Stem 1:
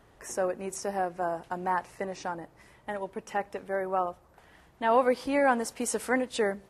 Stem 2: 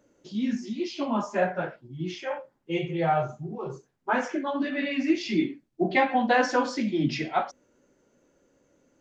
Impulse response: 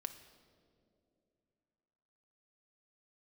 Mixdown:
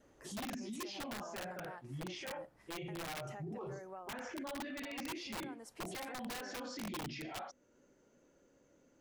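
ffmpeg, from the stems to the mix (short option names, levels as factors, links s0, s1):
-filter_complex "[0:a]acompressor=threshold=0.0178:ratio=6,volume=0.299[s0];[1:a]alimiter=limit=0.0944:level=0:latency=1:release=423,volume=0.668[s1];[s0][s1]amix=inputs=2:normalize=0,adynamicequalizer=threshold=0.002:dfrequency=980:dqfactor=4.8:tfrequency=980:tqfactor=4.8:attack=5:release=100:ratio=0.375:range=3:mode=cutabove:tftype=bell,aeval=exprs='(mod(22.4*val(0)+1,2)-1)/22.4':c=same,alimiter=level_in=4.73:limit=0.0631:level=0:latency=1:release=12,volume=0.211"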